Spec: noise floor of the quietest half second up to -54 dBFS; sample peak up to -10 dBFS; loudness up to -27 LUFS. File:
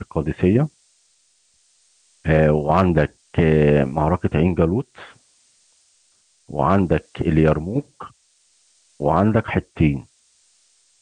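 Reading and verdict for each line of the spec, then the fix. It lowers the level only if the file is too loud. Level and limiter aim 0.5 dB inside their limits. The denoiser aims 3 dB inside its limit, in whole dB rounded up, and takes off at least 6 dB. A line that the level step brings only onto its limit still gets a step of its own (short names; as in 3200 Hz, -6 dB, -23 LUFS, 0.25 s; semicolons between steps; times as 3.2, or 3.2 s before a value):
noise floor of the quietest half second -61 dBFS: OK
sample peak -3.5 dBFS: fail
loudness -19.5 LUFS: fail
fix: gain -8 dB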